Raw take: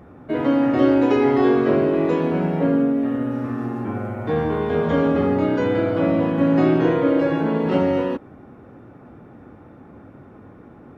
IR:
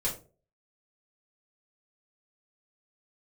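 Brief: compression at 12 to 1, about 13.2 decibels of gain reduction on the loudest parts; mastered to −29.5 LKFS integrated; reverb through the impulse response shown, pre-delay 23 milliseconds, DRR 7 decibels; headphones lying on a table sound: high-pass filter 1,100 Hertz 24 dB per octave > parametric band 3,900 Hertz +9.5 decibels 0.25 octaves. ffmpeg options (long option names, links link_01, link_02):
-filter_complex "[0:a]acompressor=threshold=-26dB:ratio=12,asplit=2[link_01][link_02];[1:a]atrim=start_sample=2205,adelay=23[link_03];[link_02][link_03]afir=irnorm=-1:irlink=0,volume=-12.5dB[link_04];[link_01][link_04]amix=inputs=2:normalize=0,highpass=frequency=1100:width=0.5412,highpass=frequency=1100:width=1.3066,equalizer=frequency=3900:width_type=o:width=0.25:gain=9.5,volume=14dB"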